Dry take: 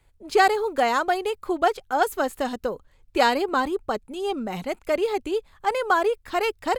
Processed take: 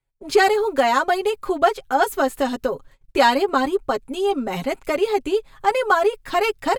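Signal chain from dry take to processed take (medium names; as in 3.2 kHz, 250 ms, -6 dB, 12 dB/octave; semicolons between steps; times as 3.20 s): gate -51 dBFS, range -26 dB; comb 7.4 ms, depth 71%; in parallel at 0 dB: compression, threshold -30 dBFS, peak gain reduction 17 dB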